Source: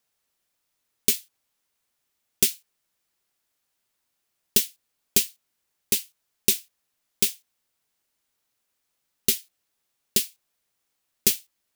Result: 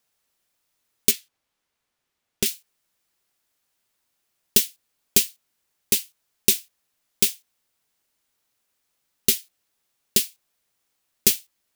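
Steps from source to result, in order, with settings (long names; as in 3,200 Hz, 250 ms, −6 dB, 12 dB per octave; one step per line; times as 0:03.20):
0:01.11–0:02.46: high-shelf EQ 5,800 Hz −10.5 dB
level +2.5 dB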